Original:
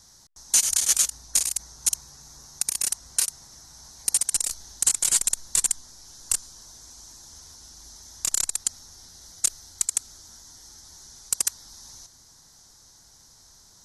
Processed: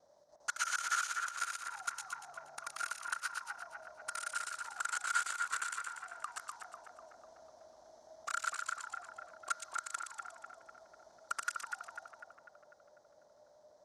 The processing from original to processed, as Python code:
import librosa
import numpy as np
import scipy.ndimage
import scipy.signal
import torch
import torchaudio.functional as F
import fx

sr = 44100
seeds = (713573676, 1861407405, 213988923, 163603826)

y = fx.local_reverse(x, sr, ms=80.0)
y = fx.auto_wah(y, sr, base_hz=570.0, top_hz=1400.0, q=18.0, full_db=-24.5, direction='up')
y = fx.echo_split(y, sr, split_hz=2300.0, low_ms=248, high_ms=119, feedback_pct=52, wet_db=-4)
y = F.gain(torch.from_numpy(y), 17.5).numpy()